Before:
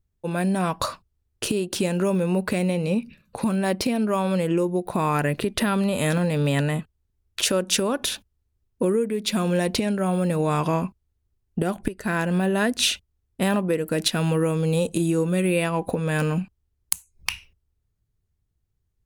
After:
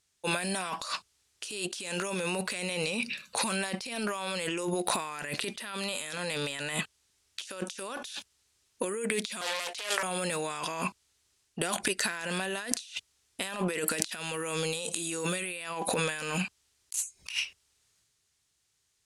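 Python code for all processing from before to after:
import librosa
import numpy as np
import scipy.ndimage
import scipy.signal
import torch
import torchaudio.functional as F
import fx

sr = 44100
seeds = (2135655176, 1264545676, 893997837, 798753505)

y = fx.chain(x, sr, fx.highpass(hz=510.0, slope=24),
    fx.doppler_dist(depth_ms=0.4), at=(9.41, 10.03))
y = fx.weighting(y, sr, curve='ITU-R 468')
y = fx.transient(y, sr, attack_db=-7, sustain_db=4)
y = fx.over_compress(y, sr, threshold_db=-35.0, ratio=-1.0)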